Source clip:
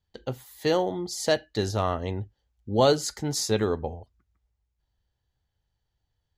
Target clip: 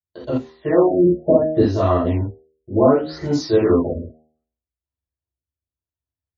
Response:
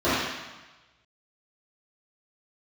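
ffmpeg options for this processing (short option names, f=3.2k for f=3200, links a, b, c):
-filter_complex "[0:a]agate=range=-23dB:threshold=-49dB:ratio=16:detection=peak,bandreject=f=78.37:t=h:w=4,bandreject=f=156.74:t=h:w=4,bandreject=f=235.11:t=h:w=4,bandreject=f=313.48:t=h:w=4,bandreject=f=391.85:t=h:w=4,bandreject=f=470.22:t=h:w=4,bandreject=f=548.59:t=h:w=4,bandreject=f=626.96:t=h:w=4,bandreject=f=705.33:t=h:w=4,bandreject=f=783.7:t=h:w=4,bandreject=f=862.07:t=h:w=4,asettb=1/sr,asplit=3[a][b][c];[a]atrim=end=1.034[d];[b]atrim=start=1.03:end=1.6,asetpts=PTS-STARTPTS,afade=t=in:d=0.004:c=qsin,afade=t=out:st=0.566:d=0.004:c=qsin,tiltshelf=f=1.4k:g=9.5[e];[c]atrim=start=1.596[f];[d][e]acrossfade=d=0.004:c1=hsin:c2=qsin[g];[g][f]acrossfade=d=0.004:c1=qsin:c2=hsin,acompressor=threshold=-20dB:ratio=6[h];[1:a]atrim=start_sample=2205,atrim=end_sample=3969[i];[h][i]afir=irnorm=-1:irlink=0,afftfilt=real='re*lt(b*sr/1024,620*pow(7600/620,0.5+0.5*sin(2*PI*0.68*pts/sr)))':imag='im*lt(b*sr/1024,620*pow(7600/620,0.5+0.5*sin(2*PI*0.68*pts/sr)))':win_size=1024:overlap=0.75,volume=-10dB"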